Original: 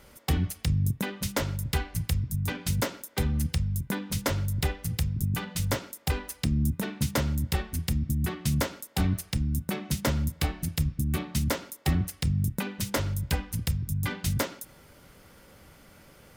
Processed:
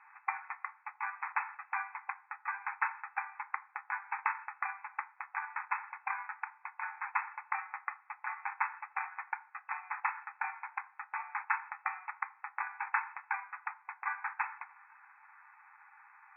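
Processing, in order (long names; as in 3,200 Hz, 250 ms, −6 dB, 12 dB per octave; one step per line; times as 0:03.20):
decimation without filtering 14×
linear-phase brick-wall band-pass 760–2,600 Hz
feedback delay network reverb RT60 0.34 s, low-frequency decay 1.4×, high-frequency decay 0.55×, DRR 10 dB
level +1 dB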